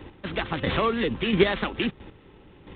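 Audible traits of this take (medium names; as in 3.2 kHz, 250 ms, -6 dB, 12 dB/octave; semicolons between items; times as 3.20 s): a buzz of ramps at a fixed pitch in blocks of 8 samples; chopped level 1.5 Hz, depth 60%, duty 15%; G.726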